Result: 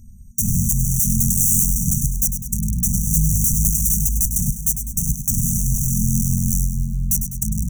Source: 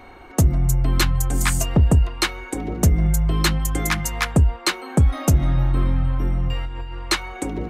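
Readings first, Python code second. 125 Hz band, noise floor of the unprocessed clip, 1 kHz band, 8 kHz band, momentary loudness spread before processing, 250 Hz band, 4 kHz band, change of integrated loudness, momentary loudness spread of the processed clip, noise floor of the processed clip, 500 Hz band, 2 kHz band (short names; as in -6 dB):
-1.0 dB, -41 dBFS, under -40 dB, +10.5 dB, 8 LU, +0.5 dB, under -15 dB, +2.5 dB, 6 LU, -35 dBFS, under -40 dB, under -40 dB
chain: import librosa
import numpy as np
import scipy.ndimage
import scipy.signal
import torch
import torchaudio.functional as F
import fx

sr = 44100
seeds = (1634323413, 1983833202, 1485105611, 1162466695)

y = fx.peak_eq(x, sr, hz=1500.0, db=15.0, octaves=0.39)
y = (np.mod(10.0 ** (18.0 / 20.0) * y + 1.0, 2.0) - 1.0) / 10.0 ** (18.0 / 20.0)
y = fx.brickwall_bandstop(y, sr, low_hz=230.0, high_hz=5700.0)
y = fx.echo_split(y, sr, split_hz=1600.0, low_ms=714, high_ms=101, feedback_pct=52, wet_db=-9.0)
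y = y * 10.0 ** (8.0 / 20.0)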